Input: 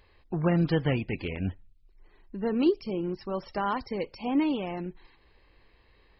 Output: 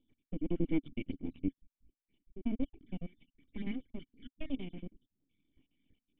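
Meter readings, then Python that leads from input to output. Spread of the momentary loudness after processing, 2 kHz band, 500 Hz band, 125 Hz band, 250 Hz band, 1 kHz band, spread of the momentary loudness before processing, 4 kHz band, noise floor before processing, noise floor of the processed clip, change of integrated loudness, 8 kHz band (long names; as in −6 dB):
16 LU, −15.5 dB, −15.5 dB, −13.5 dB, −9.0 dB, −27.0 dB, 10 LU, −14.5 dB, −62 dBFS, below −85 dBFS, −10.5 dB, can't be measured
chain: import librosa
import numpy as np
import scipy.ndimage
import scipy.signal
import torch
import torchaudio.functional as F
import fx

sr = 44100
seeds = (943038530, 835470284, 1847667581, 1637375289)

y = fx.spec_dropout(x, sr, seeds[0], share_pct=70)
y = np.abs(y)
y = fx.formant_cascade(y, sr, vowel='i')
y = y * librosa.db_to_amplitude(8.0)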